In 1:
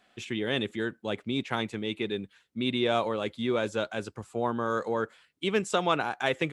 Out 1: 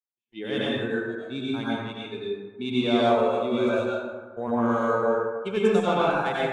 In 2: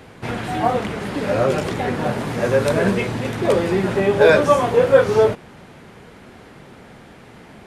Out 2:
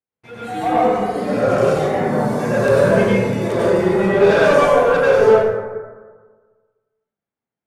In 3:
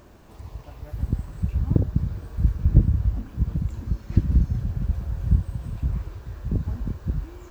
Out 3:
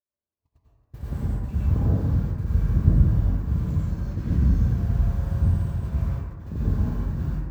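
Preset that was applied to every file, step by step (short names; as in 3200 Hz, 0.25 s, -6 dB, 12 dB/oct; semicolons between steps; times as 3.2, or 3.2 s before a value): harmonic-percussive split harmonic +7 dB; gate -25 dBFS, range -38 dB; low shelf 84 Hz -11.5 dB; spectral noise reduction 14 dB; soft clip -10 dBFS; plate-style reverb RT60 1.5 s, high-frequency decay 0.4×, pre-delay 80 ms, DRR -7.5 dB; gain -7 dB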